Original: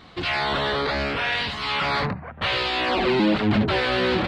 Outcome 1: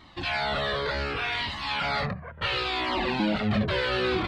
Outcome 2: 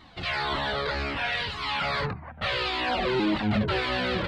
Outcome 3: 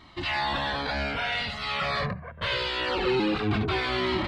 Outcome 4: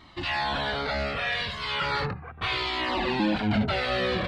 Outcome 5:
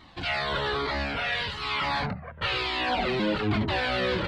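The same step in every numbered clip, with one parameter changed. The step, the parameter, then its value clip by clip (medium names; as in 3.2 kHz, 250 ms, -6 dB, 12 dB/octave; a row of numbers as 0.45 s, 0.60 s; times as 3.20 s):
Shepard-style flanger, rate: 0.69 Hz, 1.8 Hz, 0.24 Hz, 0.36 Hz, 1.1 Hz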